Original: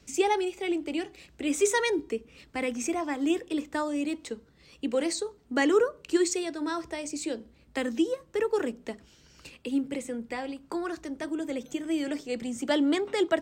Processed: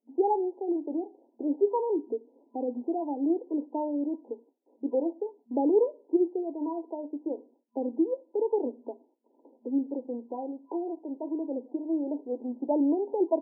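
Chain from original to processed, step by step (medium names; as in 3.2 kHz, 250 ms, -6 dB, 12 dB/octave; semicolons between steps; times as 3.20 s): gate with hold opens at -46 dBFS; FFT band-pass 230–1000 Hz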